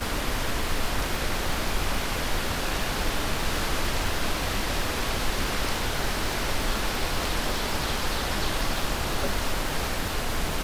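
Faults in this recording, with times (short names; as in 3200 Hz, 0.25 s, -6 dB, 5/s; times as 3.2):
crackle 150/s -30 dBFS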